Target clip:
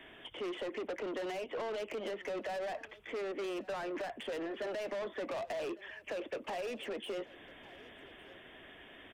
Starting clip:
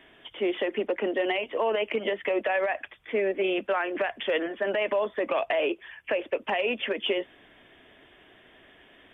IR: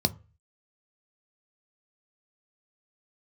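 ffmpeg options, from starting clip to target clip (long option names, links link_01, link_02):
-filter_complex "[0:a]asoftclip=type=tanh:threshold=-33dB,acrossover=split=260|920[link_01][link_02][link_03];[link_01]acompressor=threshold=-56dB:ratio=4[link_04];[link_02]acompressor=threshold=-38dB:ratio=4[link_05];[link_03]acompressor=threshold=-48dB:ratio=4[link_06];[link_04][link_05][link_06]amix=inputs=3:normalize=0,aecho=1:1:1154:0.0944,volume=1dB"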